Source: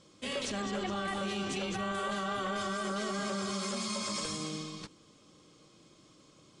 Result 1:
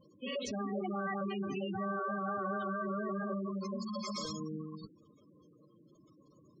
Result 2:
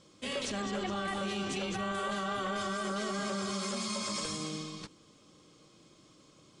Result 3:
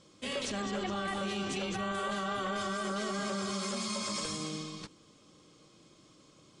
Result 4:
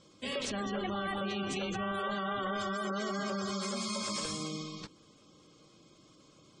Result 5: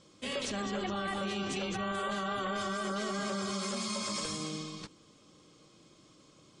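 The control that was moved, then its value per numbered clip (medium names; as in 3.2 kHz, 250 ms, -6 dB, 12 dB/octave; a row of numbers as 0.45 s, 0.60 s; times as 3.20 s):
spectral gate, under each frame's peak: -10 dB, -60 dB, -45 dB, -25 dB, -35 dB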